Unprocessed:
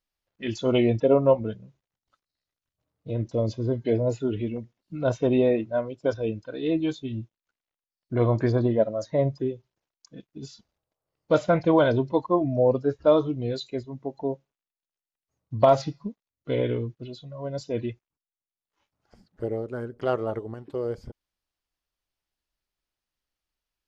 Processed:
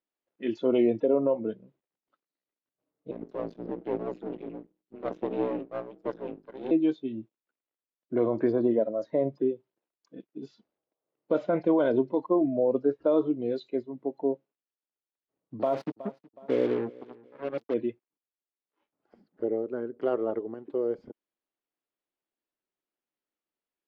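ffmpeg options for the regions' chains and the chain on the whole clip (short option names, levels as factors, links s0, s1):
-filter_complex "[0:a]asettb=1/sr,asplit=3[s0][s1][s2];[s0]atrim=end=3.114[s3];[s1]atrim=start=3.11:end=6.71,asetpts=PTS-STARTPTS,afade=t=in:d=0.004:c=qsin,afade=t=out:st=3.596:d=0.004:c=qsin,bandreject=f=50:t=h:w=6,bandreject=f=100:t=h:w=6,bandreject=f=150:t=h:w=6,bandreject=f=200:t=h:w=6,bandreject=f=250:t=h:w=6,bandreject=f=300:t=h:w=6,bandreject=f=350:t=h:w=6,bandreject=f=400:t=h:w=6,aeval=exprs='val(0)*sin(2*PI*60*n/s)':c=same,aeval=exprs='max(val(0),0)':c=same[s4];[s2]atrim=start=6.706[s5];[s3][s4]acrossfade=d=0.004:c1=hsin:c2=qsin[s6];[s6][s5]acrossfade=d=0.004:c1=qsin:c2=hsin,asettb=1/sr,asplit=3[s7][s8][s9];[s7]atrim=end=15.594[s10];[s8]atrim=start=15.59:end=17.74,asetpts=PTS-STARTPTS,afade=t=in:d=0.004:c=qsin,afade=t=out:st=2.146:d=0.004:c=qsin,acrusher=bits=4:mix=0:aa=0.5,aecho=1:1:369|738:0.0708|0.0255,atrim=end_sample=94815[s11];[s9]atrim=start=17.736[s12];[s10][s11]acrossfade=d=0.004:c1=hsin:c2=qsin[s13];[s13][s12]acrossfade=d=0.004:c1=qsin:c2=hsin,acrossover=split=180 3800:gain=0.112 1 0.0891[s14][s15][s16];[s14][s15][s16]amix=inputs=3:normalize=0,alimiter=limit=0.168:level=0:latency=1:release=56,equalizer=f=330:t=o:w=1.9:g=9.5,volume=0.473"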